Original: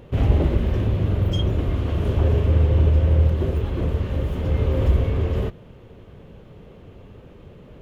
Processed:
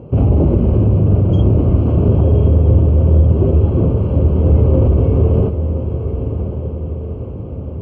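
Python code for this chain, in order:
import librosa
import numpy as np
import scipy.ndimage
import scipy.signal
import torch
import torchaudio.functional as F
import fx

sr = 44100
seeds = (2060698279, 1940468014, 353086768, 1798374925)

p1 = scipy.signal.sosfilt(scipy.signal.butter(2, 82.0, 'highpass', fs=sr, output='sos'), x)
p2 = fx.low_shelf(p1, sr, hz=410.0, db=4.5)
p3 = fx.over_compress(p2, sr, threshold_db=-19.0, ratio=-1.0)
p4 = p2 + (p3 * 10.0 ** (0.5 / 20.0))
p5 = np.convolve(p4, np.full(24, 1.0 / 24))[:len(p4)]
p6 = fx.echo_diffused(p5, sr, ms=1064, feedback_pct=55, wet_db=-8.5)
y = p6 * 10.0 ** (1.0 / 20.0)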